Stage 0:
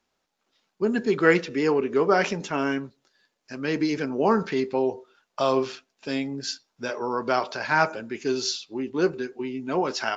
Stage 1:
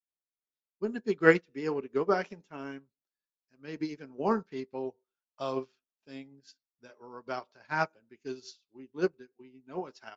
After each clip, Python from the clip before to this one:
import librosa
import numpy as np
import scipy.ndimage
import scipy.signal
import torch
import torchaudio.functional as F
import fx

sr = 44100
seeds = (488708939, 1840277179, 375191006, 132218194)

y = fx.low_shelf(x, sr, hz=170.0, db=6.0)
y = fx.upward_expand(y, sr, threshold_db=-35.0, expansion=2.5)
y = y * librosa.db_to_amplitude(-1.0)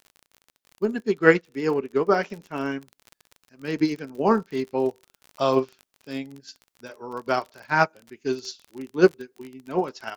y = fx.dmg_crackle(x, sr, seeds[0], per_s=34.0, level_db=-45.0)
y = fx.rider(y, sr, range_db=4, speed_s=0.5)
y = y * librosa.db_to_amplitude(8.5)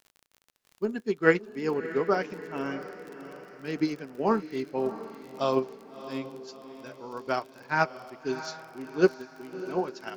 y = fx.echo_diffused(x, sr, ms=654, feedback_pct=49, wet_db=-13)
y = y * librosa.db_to_amplitude(-5.0)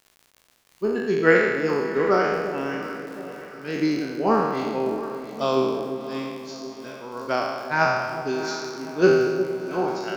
y = fx.spec_trails(x, sr, decay_s=1.37)
y = fx.echo_alternate(y, sr, ms=355, hz=830.0, feedback_pct=63, wet_db=-11.0)
y = y * librosa.db_to_amplitude(2.0)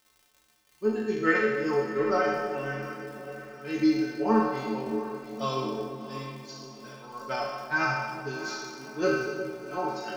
y = fx.stiff_resonator(x, sr, f0_hz=65.0, decay_s=0.5, stiffness=0.03)
y = y * librosa.db_to_amplitude(5.5)